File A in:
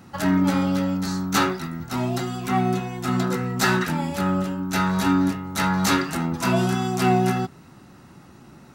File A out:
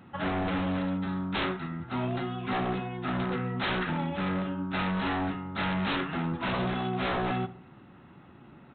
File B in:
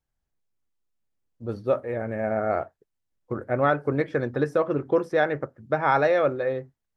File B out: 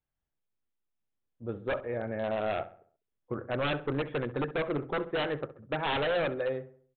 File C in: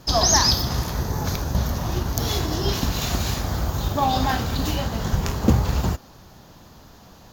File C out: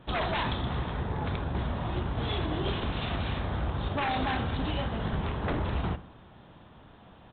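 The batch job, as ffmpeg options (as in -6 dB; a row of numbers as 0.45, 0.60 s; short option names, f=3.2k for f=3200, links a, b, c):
-filter_complex "[0:a]lowshelf=f=62:g=-5,aresample=8000,aeval=exprs='0.106*(abs(mod(val(0)/0.106+3,4)-2)-1)':c=same,aresample=44100,asplit=2[a][b];[b]adelay=66,lowpass=f=1.9k:p=1,volume=-14dB,asplit=2[c][d];[d]adelay=66,lowpass=f=1.9k:p=1,volume=0.48,asplit=2[e][f];[f]adelay=66,lowpass=f=1.9k:p=1,volume=0.48,asplit=2[g][h];[h]adelay=66,lowpass=f=1.9k:p=1,volume=0.48,asplit=2[i][j];[j]adelay=66,lowpass=f=1.9k:p=1,volume=0.48[k];[a][c][e][g][i][k]amix=inputs=6:normalize=0,volume=-4.5dB"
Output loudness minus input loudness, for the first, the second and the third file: -8.0, -7.5, -9.0 LU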